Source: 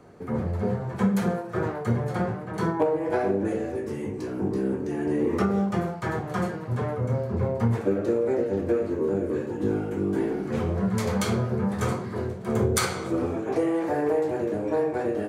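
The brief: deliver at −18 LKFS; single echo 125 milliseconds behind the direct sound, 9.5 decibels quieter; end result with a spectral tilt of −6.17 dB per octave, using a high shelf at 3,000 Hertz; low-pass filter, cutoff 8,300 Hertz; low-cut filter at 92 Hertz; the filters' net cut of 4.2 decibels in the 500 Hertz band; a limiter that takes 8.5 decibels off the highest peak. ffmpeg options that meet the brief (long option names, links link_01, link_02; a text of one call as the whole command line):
ffmpeg -i in.wav -af "highpass=92,lowpass=8300,equalizer=frequency=500:width_type=o:gain=-5,highshelf=frequency=3000:gain=-6.5,alimiter=limit=-22.5dB:level=0:latency=1,aecho=1:1:125:0.335,volume=13dB" out.wav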